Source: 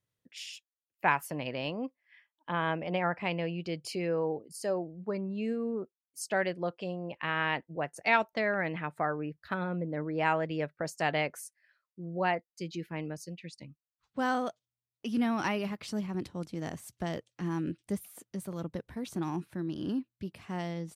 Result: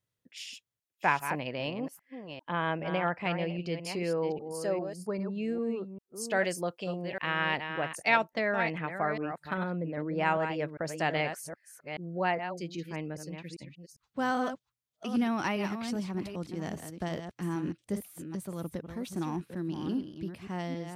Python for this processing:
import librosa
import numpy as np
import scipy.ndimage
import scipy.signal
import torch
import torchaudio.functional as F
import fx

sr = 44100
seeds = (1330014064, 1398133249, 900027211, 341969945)

y = fx.reverse_delay(x, sr, ms=399, wet_db=-8.0)
y = fx.high_shelf(y, sr, hz=fx.line((6.24, 3300.0), (8.15, 4800.0)), db=7.0, at=(6.24, 8.15), fade=0.02)